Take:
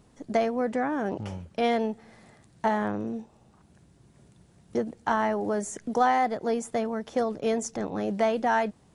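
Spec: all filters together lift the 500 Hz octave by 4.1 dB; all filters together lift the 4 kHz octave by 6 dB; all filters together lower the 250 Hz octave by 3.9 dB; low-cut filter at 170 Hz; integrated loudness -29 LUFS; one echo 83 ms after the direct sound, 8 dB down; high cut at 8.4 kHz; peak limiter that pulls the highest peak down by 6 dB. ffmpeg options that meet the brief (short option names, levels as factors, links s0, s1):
-af "highpass=170,lowpass=8400,equalizer=f=250:t=o:g=-4.5,equalizer=f=500:t=o:g=6,equalizer=f=4000:t=o:g=8,alimiter=limit=0.168:level=0:latency=1,aecho=1:1:83:0.398,volume=0.75"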